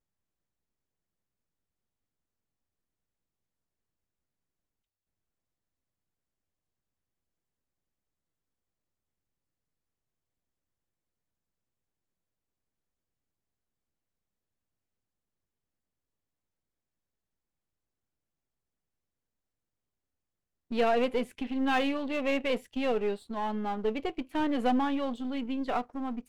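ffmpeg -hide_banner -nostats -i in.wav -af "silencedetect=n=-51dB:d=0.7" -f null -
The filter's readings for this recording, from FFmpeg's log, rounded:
silence_start: 0.00
silence_end: 20.71 | silence_duration: 20.71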